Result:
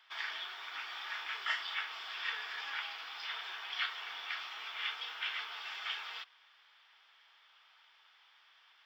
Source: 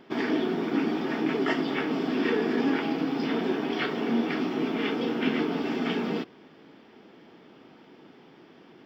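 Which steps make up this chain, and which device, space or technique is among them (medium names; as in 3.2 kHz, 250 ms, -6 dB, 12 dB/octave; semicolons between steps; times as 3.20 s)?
0.87–1.75 s: doubling 34 ms -5.5 dB; headphones lying on a table (high-pass 1.1 kHz 24 dB/octave; peaking EQ 3.5 kHz +6 dB 0.49 oct); trim -5 dB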